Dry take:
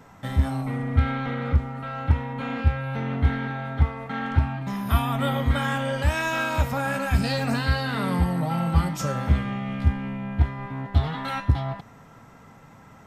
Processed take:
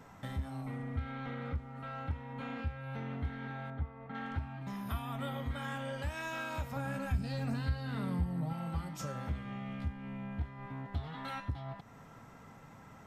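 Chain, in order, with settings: 6.76–8.53 low shelf 280 Hz +11.5 dB; compressor 2:1, threshold -38 dBFS, peak gain reduction 17.5 dB; 3.7–4.15 tape spacing loss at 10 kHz 29 dB; gain -5 dB

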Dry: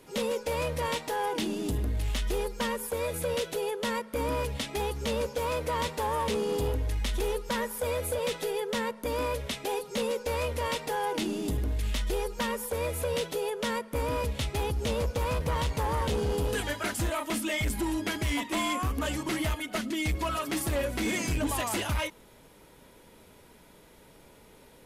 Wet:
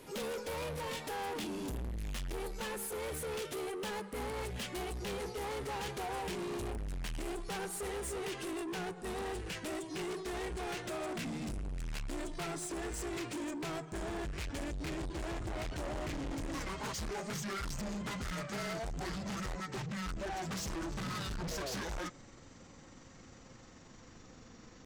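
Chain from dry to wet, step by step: gliding pitch shift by -11 st starting unshifted; soft clip -38.5 dBFS, distortion -7 dB; gain +1.5 dB

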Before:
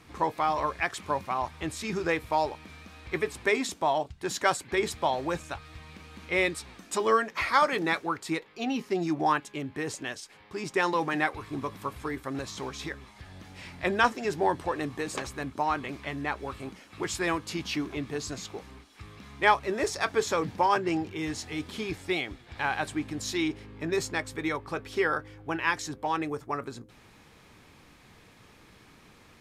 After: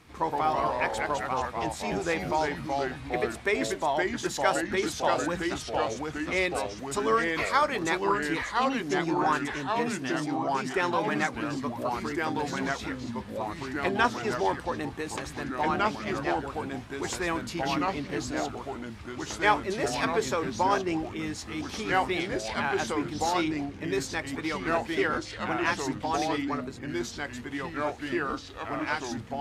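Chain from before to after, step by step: echoes that change speed 92 ms, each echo -2 st, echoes 3; gain -1.5 dB

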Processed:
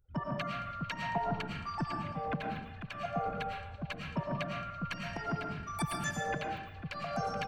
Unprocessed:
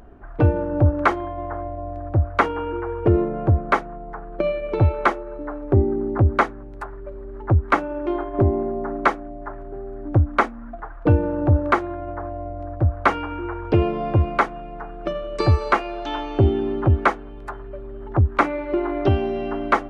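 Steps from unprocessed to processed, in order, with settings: per-bin expansion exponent 2; compressor 6:1, threshold -32 dBFS, peak gain reduction 17 dB; transient shaper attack -11 dB, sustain +2 dB; tremolo saw up 1.6 Hz, depth 70%; pitch shift -5 st; delay with a stepping band-pass 0.296 s, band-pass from 3700 Hz, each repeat -0.7 oct, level -10.5 dB; wide varispeed 2.66×; digital reverb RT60 0.83 s, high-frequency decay 0.65×, pre-delay 70 ms, DRR 0.5 dB; gain +4.5 dB

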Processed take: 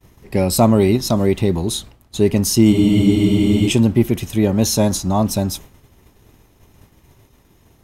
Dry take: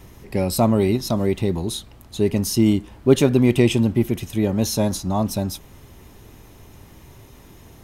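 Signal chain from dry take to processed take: dynamic EQ 7200 Hz, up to +4 dB, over -43 dBFS, Q 2.2; expander -36 dBFS; spectral freeze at 2.73, 0.96 s; gain +4.5 dB

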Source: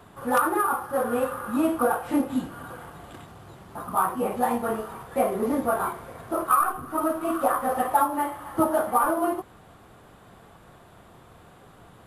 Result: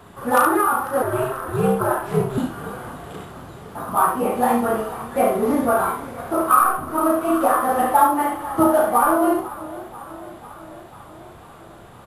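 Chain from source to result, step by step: early reflections 34 ms -5.5 dB, 71 ms -6 dB; 1.02–2.38 ring modulator 130 Hz; warbling echo 0.495 s, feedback 66%, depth 92 cents, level -18 dB; gain +4 dB

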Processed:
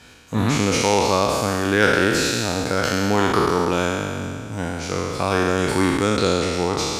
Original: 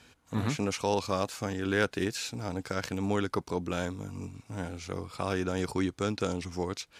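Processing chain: spectral trails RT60 2.26 s; gain +8 dB

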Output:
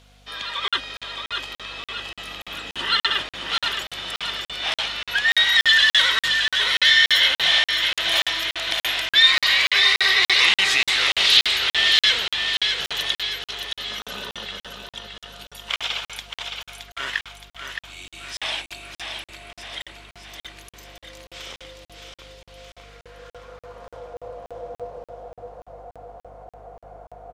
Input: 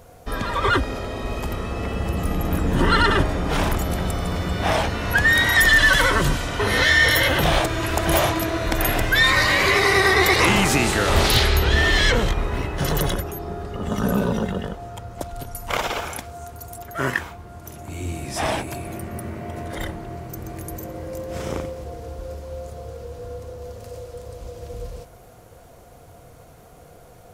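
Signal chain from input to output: band-pass sweep 3400 Hz -> 740 Hz, 22.39–24.21; hum 50 Hz, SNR 30 dB; on a send: feedback echo 0.619 s, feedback 52%, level -6 dB; on the sum: crackling interface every 0.29 s, samples 2048, zero, from 0.68; gain +8.5 dB

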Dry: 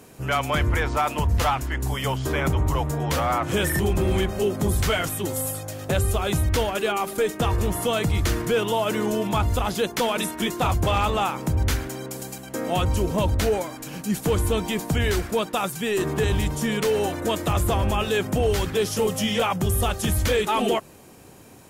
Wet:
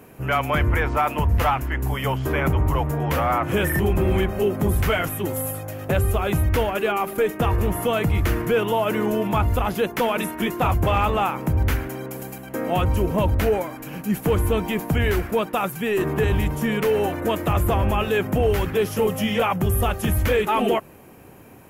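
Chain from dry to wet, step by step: band shelf 5700 Hz -10.5 dB; gain +2 dB

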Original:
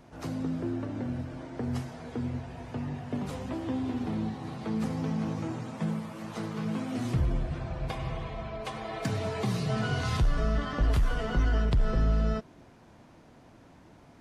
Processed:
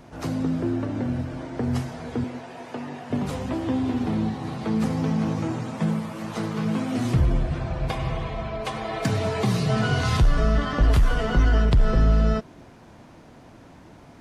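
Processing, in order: 2.24–3.1 HPF 300 Hz 12 dB/oct; gain +7 dB

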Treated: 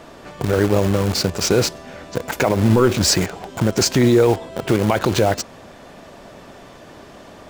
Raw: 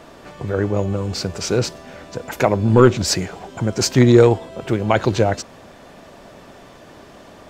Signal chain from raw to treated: dynamic EQ 130 Hz, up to -4 dB, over -25 dBFS, Q 1.2; in parallel at -5 dB: bit-crush 4-bit; on the sum: maximiser +6.5 dB; gain -5 dB

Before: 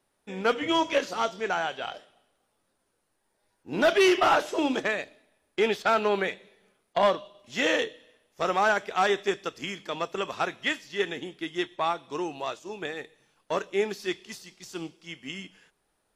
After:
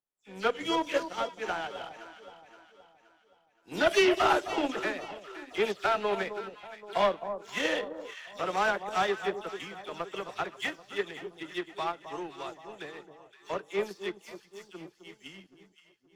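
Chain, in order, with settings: spectral delay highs early, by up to 0.102 s; power-law curve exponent 1.4; echo with dull and thin repeats by turns 0.261 s, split 1100 Hz, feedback 64%, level -9.5 dB

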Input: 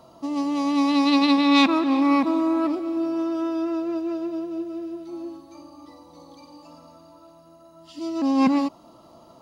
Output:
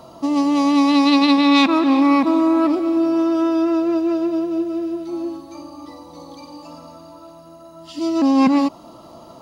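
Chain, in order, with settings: compressor 2:1, threshold -23 dBFS, peak gain reduction 6 dB; gain +8.5 dB

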